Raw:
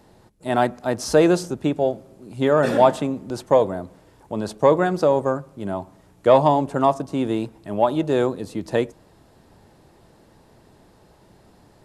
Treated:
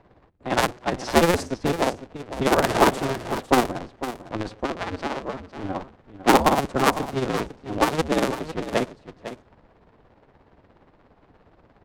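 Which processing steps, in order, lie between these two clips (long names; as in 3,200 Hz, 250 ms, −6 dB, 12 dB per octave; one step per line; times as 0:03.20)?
sub-harmonics by changed cycles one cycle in 2, inverted
0:04.51–0:05.60: downward compressor 4 to 1, threshold −24 dBFS, peak gain reduction 12 dB
low-pass that shuts in the quiet parts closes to 2,300 Hz, open at −13 dBFS
amplitude tremolo 17 Hz, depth 60%
single-tap delay 503 ms −12 dB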